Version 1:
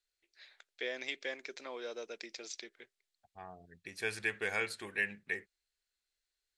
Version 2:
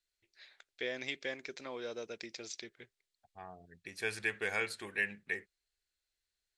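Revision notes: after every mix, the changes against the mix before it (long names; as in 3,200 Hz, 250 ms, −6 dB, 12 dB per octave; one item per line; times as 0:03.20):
first voice: remove high-pass filter 320 Hz 12 dB per octave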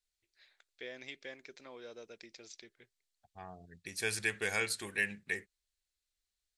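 first voice −7.5 dB
second voice: add bass and treble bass +5 dB, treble +11 dB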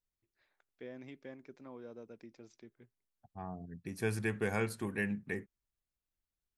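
first voice −4.0 dB
master: add octave-band graphic EQ 125/250/1,000/2,000/4,000/8,000 Hz +11/+10/+5/−5/−11/−10 dB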